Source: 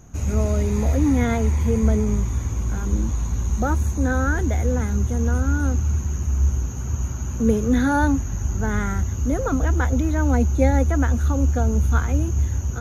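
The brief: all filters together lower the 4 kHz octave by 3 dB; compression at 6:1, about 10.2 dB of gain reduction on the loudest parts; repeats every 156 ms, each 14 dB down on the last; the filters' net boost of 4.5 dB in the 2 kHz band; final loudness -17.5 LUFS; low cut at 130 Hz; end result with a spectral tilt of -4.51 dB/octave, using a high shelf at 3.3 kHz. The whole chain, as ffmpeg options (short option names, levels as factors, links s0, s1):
-af "highpass=130,equalizer=f=2000:t=o:g=8.5,highshelf=f=3300:g=-5,equalizer=f=4000:t=o:g=-3.5,acompressor=threshold=0.0501:ratio=6,aecho=1:1:156|312:0.2|0.0399,volume=4.73"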